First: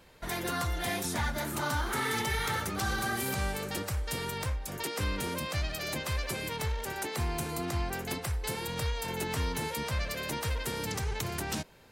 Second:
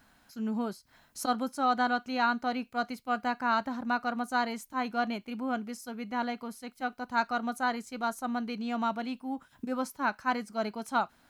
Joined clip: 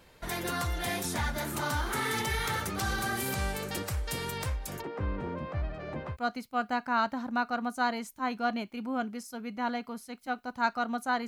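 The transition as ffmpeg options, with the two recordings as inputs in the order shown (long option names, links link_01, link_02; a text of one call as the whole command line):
ffmpeg -i cue0.wav -i cue1.wav -filter_complex "[0:a]asplit=3[link_01][link_02][link_03];[link_01]afade=type=out:start_time=4.8:duration=0.02[link_04];[link_02]lowpass=1200,afade=type=in:start_time=4.8:duration=0.02,afade=type=out:start_time=6.17:duration=0.02[link_05];[link_03]afade=type=in:start_time=6.17:duration=0.02[link_06];[link_04][link_05][link_06]amix=inputs=3:normalize=0,apad=whole_dur=11.27,atrim=end=11.27,atrim=end=6.17,asetpts=PTS-STARTPTS[link_07];[1:a]atrim=start=2.63:end=7.81,asetpts=PTS-STARTPTS[link_08];[link_07][link_08]acrossfade=duration=0.08:curve1=tri:curve2=tri" out.wav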